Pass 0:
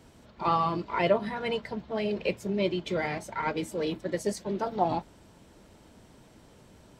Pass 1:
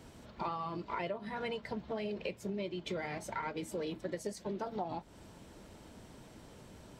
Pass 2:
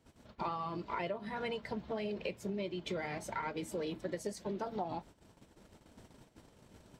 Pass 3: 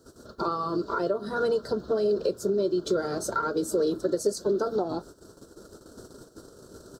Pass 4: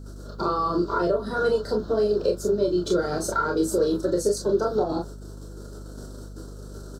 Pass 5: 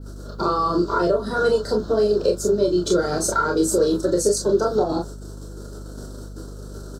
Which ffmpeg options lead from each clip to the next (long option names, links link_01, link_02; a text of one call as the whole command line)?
ffmpeg -i in.wav -af "acompressor=threshold=-36dB:ratio=10,volume=1dB" out.wav
ffmpeg -i in.wav -af "agate=range=-16dB:threshold=-52dB:ratio=16:detection=peak" out.wav
ffmpeg -i in.wav -filter_complex "[0:a]firequalizer=gain_entry='entry(200,0);entry(390,12);entry(860,-5);entry(1400,11);entry(2100,-24);entry(4200,8)':delay=0.05:min_phase=1,asplit=2[link_01][link_02];[link_02]alimiter=level_in=2.5dB:limit=-24dB:level=0:latency=1:release=281,volume=-2.5dB,volume=-2.5dB[link_03];[link_01][link_03]amix=inputs=2:normalize=0,volume=2dB" out.wav
ffmpeg -i in.wav -af "aecho=1:1:28|40:0.596|0.501,aeval=exprs='val(0)+0.01*(sin(2*PI*50*n/s)+sin(2*PI*2*50*n/s)/2+sin(2*PI*3*50*n/s)/3+sin(2*PI*4*50*n/s)/4+sin(2*PI*5*50*n/s)/5)':channel_layout=same,volume=1.5dB" out.wav
ffmpeg -i in.wav -af "adynamicequalizer=threshold=0.00355:dfrequency=7500:dqfactor=1.1:tfrequency=7500:tqfactor=1.1:attack=5:release=100:ratio=0.375:range=3:mode=boostabove:tftype=bell,volume=3.5dB" out.wav